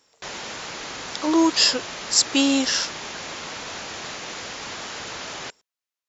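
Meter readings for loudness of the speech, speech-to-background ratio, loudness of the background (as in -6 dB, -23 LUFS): -20.0 LUFS, 12.5 dB, -32.5 LUFS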